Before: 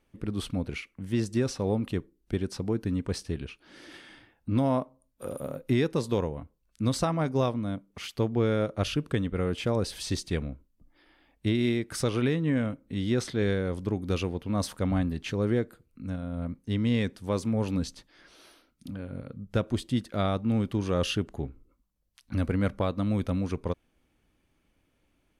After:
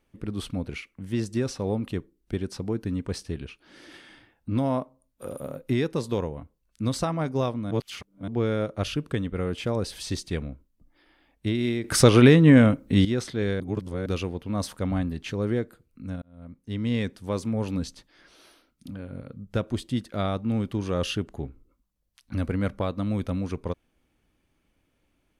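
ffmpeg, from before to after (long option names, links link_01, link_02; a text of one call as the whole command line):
ffmpeg -i in.wav -filter_complex "[0:a]asplit=8[link_01][link_02][link_03][link_04][link_05][link_06][link_07][link_08];[link_01]atrim=end=7.712[link_09];[link_02]atrim=start=7.708:end=8.282,asetpts=PTS-STARTPTS,areverse[link_10];[link_03]atrim=start=8.278:end=11.842[link_11];[link_04]atrim=start=11.838:end=13.052,asetpts=PTS-STARTPTS,volume=12dB[link_12];[link_05]atrim=start=13.048:end=13.602[link_13];[link_06]atrim=start=13.598:end=14.062,asetpts=PTS-STARTPTS,areverse[link_14];[link_07]atrim=start=14.058:end=16.22,asetpts=PTS-STARTPTS,afade=type=out:start_time=2.158:duration=0.004:curve=hsin[link_15];[link_08]atrim=start=16.22,asetpts=PTS-STARTPTS,afade=type=in:duration=0.73[link_16];[link_09][link_10]acrossfade=duration=0.004:curve1=hsin:curve2=hsin[link_17];[link_17][link_11]acrossfade=duration=0.004:curve1=hsin:curve2=hsin[link_18];[link_18][link_12]acrossfade=duration=0.004:curve1=hsin:curve2=hsin[link_19];[link_19][link_13]acrossfade=duration=0.004:curve1=hsin:curve2=hsin[link_20];[link_20][link_14]acrossfade=duration=0.004:curve1=hsin:curve2=hsin[link_21];[link_15][link_16]concat=n=2:v=0:a=1[link_22];[link_21][link_22]acrossfade=duration=0.004:curve1=hsin:curve2=hsin" out.wav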